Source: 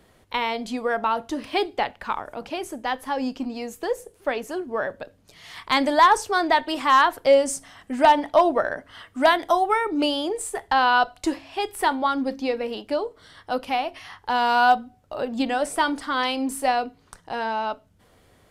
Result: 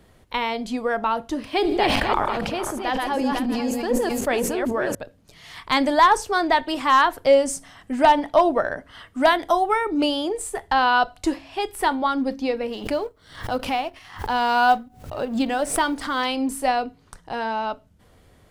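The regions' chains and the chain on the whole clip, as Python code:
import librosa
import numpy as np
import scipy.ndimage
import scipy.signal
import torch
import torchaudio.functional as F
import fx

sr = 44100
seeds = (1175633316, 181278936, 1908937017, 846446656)

y = fx.chain(x, sr, fx.reverse_delay_fb(ms=250, feedback_pct=41, wet_db=-3.5),
    fx.sustainer(db_per_s=26.0), at=(1.46, 4.95))
y = fx.chain(y, sr, fx.law_mismatch(coded='A'),
    fx.pre_swell(db_per_s=110.0), at=(12.71, 16.26))
y = fx.low_shelf(y, sr, hz=160.0, db=8.0)
y = fx.hum_notches(y, sr, base_hz=50, count=2)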